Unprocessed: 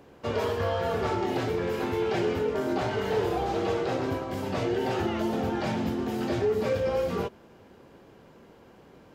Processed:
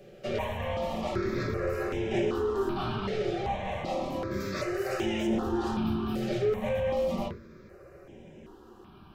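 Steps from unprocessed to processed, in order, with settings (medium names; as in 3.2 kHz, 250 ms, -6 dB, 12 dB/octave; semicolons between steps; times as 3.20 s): 2.99–3.72 s: Chebyshev low-pass 5.7 kHz, order 2; 4.40–5.27 s: tilt EQ +2.5 dB/octave; saturation -27.5 dBFS, distortion -12 dB; reverberation RT60 0.30 s, pre-delay 3 ms, DRR -1.5 dB; stepped phaser 2.6 Hz 270–4400 Hz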